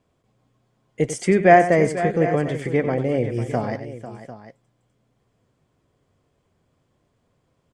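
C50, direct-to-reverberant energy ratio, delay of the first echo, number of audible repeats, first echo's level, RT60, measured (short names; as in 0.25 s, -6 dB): none, none, 94 ms, 3, -11.5 dB, none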